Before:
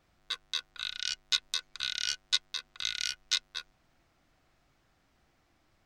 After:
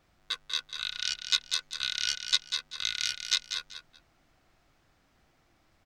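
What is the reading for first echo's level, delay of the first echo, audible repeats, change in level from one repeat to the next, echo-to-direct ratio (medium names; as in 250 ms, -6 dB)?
-8.5 dB, 193 ms, 2, -13.0 dB, -8.5 dB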